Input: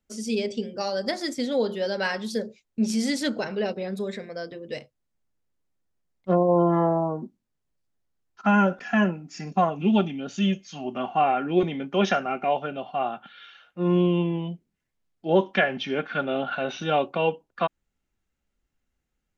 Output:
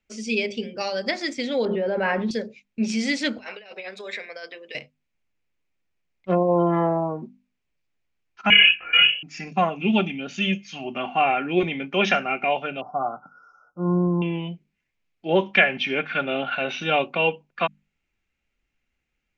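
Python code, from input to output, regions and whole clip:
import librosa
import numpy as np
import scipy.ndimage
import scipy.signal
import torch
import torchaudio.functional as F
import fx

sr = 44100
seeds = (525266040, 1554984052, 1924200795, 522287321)

y = fx.chain(x, sr, fx.lowpass(hz=1100.0, slope=12),
    fx.env_flatten(amount_pct=100), at=(1.65, 2.31))
y = fx.chain(y, sr, fx.highpass(hz=670.0, slope=12),
    fx.over_compress(threshold_db=-38.0, ratio=-0.5), at=(3.38, 4.75))
y = fx.chain(y, sr, fx.freq_invert(carrier_hz=3100),
    fx.detune_double(cents=20), at=(8.5, 9.23))
y = fx.chain(y, sr, fx.brickwall_bandstop(low_hz=1500.0, high_hz=4900.0),
    fx.high_shelf(hz=5000.0, db=-10.5),
    fx.comb(ms=6.8, depth=0.41), at=(12.81, 14.22))
y = scipy.signal.sosfilt(scipy.signal.butter(4, 7200.0, 'lowpass', fs=sr, output='sos'), y)
y = fx.peak_eq(y, sr, hz=2400.0, db=13.0, octaves=0.66)
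y = fx.hum_notches(y, sr, base_hz=50, count=5)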